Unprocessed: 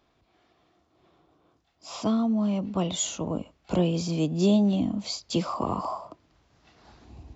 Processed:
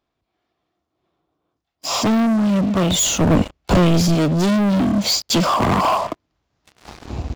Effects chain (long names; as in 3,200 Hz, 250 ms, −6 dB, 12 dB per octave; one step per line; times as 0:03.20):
leveller curve on the samples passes 5
speech leveller 0.5 s
0:02.91–0:04.15: low-shelf EQ 77 Hz +11 dB